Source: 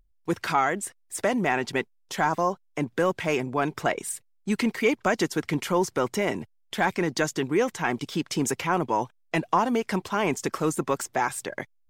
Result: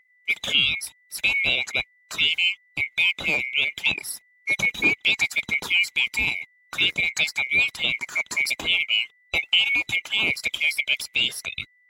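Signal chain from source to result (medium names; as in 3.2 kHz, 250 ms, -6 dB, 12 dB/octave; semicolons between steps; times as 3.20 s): split-band scrambler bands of 2 kHz; high-pass 46 Hz; peaking EQ 3.1 kHz +2.5 dB 1.5 oct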